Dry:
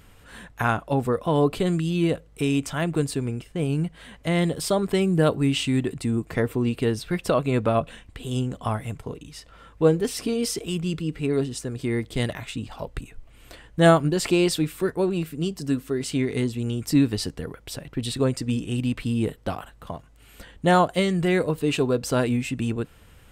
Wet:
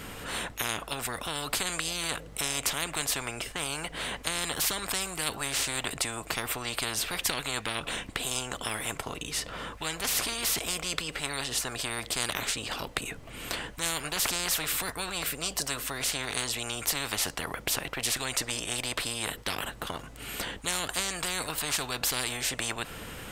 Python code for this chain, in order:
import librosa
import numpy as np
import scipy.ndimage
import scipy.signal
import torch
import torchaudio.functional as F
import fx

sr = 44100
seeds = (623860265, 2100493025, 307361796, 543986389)

y = fx.spectral_comp(x, sr, ratio=10.0)
y = y * 10.0 ** (-3.0 / 20.0)